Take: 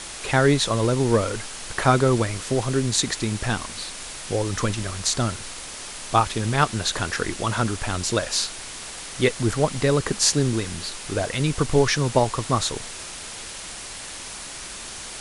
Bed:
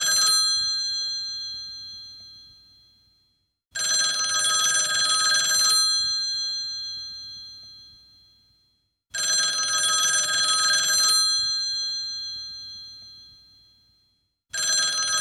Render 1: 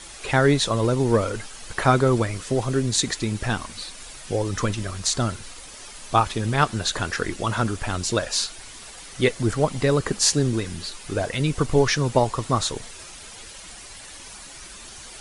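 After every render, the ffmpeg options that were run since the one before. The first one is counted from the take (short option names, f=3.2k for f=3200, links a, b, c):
-af "afftdn=nr=9:nf=-37"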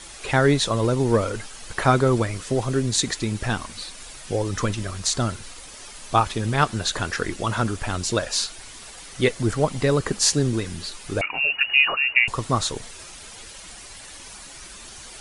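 -filter_complex "[0:a]asettb=1/sr,asplit=3[a][b][c];[a]atrim=end=11.214[d];[b]atrim=start=11.21:end=12.28,asetpts=PTS-STARTPTS,afade=t=in:d=0.004:c=qsin,afade=t=out:st=1.066:d=0.004:c=qsin,lowpass=f=2.5k:t=q:w=0.5098,lowpass=f=2.5k:t=q:w=0.6013,lowpass=f=2.5k:t=q:w=0.9,lowpass=f=2.5k:t=q:w=2.563,afreqshift=-2900[e];[c]atrim=start=12.276[f];[d][e]acrossfade=d=0.004:c1=hsin:c2=qsin[g];[g][f]acrossfade=d=0.004:c1=qsin:c2=hsin"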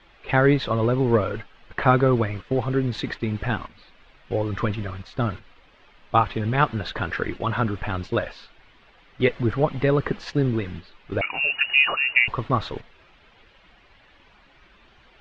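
-af "lowpass=f=3.1k:w=0.5412,lowpass=f=3.1k:w=1.3066,agate=range=-9dB:threshold=-32dB:ratio=16:detection=peak"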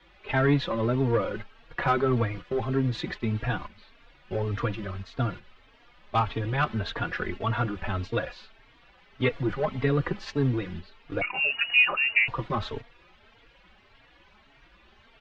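-filter_complex "[0:a]acrossover=split=130|1400[a][b][c];[b]asoftclip=type=tanh:threshold=-16dB[d];[a][d][c]amix=inputs=3:normalize=0,asplit=2[e][f];[f]adelay=3.7,afreqshift=1.7[g];[e][g]amix=inputs=2:normalize=1"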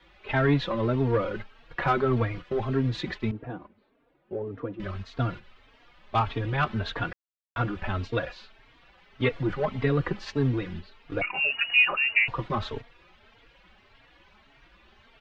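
-filter_complex "[0:a]asettb=1/sr,asplit=3[a][b][c];[a]atrim=end=3.314[d];[b]atrim=start=3.31:end=4.8,asetpts=PTS-STARTPTS,afade=t=in:d=0.004:c=qsin,afade=t=out:st=1.486:d=0.004:c=qsin,bandpass=f=350:t=q:w=1.3[e];[c]atrim=start=4.796[f];[d][e]acrossfade=d=0.004:c1=hsin:c2=qsin[g];[g][f]acrossfade=d=0.004:c1=qsin:c2=hsin,asplit=3[h][i][j];[h]atrim=end=7.13,asetpts=PTS-STARTPTS,afade=t=out:st=7.126:d=0.004:c=hsin[k];[i]atrim=start=7.13:end=7.56,asetpts=PTS-STARTPTS,volume=0[l];[j]atrim=start=7.56,asetpts=PTS-STARTPTS,afade=t=in:d=0.004:c=hsin[m];[k][l][m]concat=n=3:v=0:a=1"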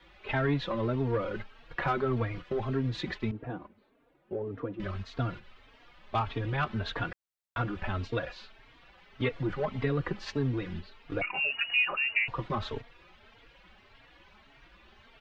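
-af "acompressor=threshold=-34dB:ratio=1.5"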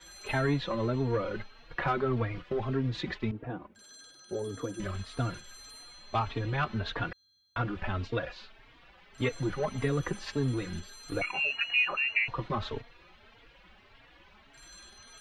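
-filter_complex "[1:a]volume=-30.5dB[a];[0:a][a]amix=inputs=2:normalize=0"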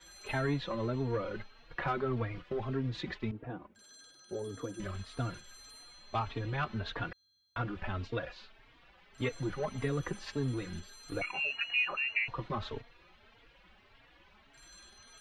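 -af "volume=-4dB"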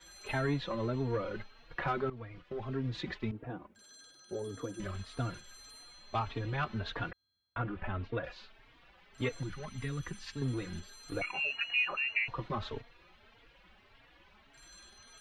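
-filter_complex "[0:a]asettb=1/sr,asplit=3[a][b][c];[a]atrim=end=7.114[d];[b]atrim=start=7.11:end=8.24,asetpts=PTS-STARTPTS,afade=t=in:d=0.004:c=qsin,afade=t=out:st=1.126:d=0.004:c=qsin,lowpass=2.5k[e];[c]atrim=start=8.236[f];[d][e]acrossfade=d=0.004:c1=hsin:c2=qsin[g];[g][f]acrossfade=d=0.004:c1=qsin:c2=hsin,asettb=1/sr,asplit=3[h][i][j];[h]atrim=end=9.434[k];[i]atrim=start=9.43:end=10.42,asetpts=PTS-STARTPTS,afade=t=in:d=0.004:c=qsin,afade=t=out:st=0.986:d=0.004:c=qsin,equalizer=f=560:w=0.7:g=-13[l];[j]atrim=start=10.416[m];[k][l]acrossfade=d=0.004:c1=hsin:c2=qsin[n];[n][m]acrossfade=d=0.004:c1=qsin:c2=hsin,asplit=2[o][p];[o]atrim=end=2.1,asetpts=PTS-STARTPTS,afade=t=out:st=2.096:d=0.004:c=hsin:silence=0.16788[q];[p]atrim=start=2.1,asetpts=PTS-STARTPTS,afade=t=in:d=0.84:silence=0.16788[r];[q][r]concat=n=2:v=0:a=1"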